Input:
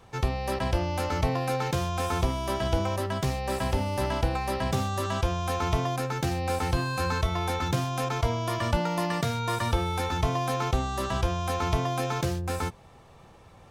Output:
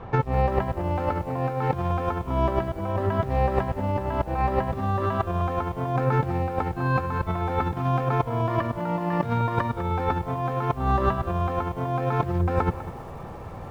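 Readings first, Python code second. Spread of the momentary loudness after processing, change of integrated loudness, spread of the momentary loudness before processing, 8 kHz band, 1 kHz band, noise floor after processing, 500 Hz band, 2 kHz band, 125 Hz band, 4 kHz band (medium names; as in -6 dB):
4 LU, +2.5 dB, 2 LU, under -15 dB, +3.5 dB, -38 dBFS, +3.5 dB, -1.0 dB, +3.0 dB, -11.0 dB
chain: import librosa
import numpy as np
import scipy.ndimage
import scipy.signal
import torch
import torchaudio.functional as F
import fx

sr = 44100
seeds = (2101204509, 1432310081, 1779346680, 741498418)

y = scipy.signal.sosfilt(scipy.signal.butter(2, 1500.0, 'lowpass', fs=sr, output='sos'), x)
y = fx.over_compress(y, sr, threshold_db=-33.0, ratio=-0.5)
y = fx.echo_crushed(y, sr, ms=200, feedback_pct=35, bits=9, wet_db=-13.5)
y = y * 10.0 ** (9.0 / 20.0)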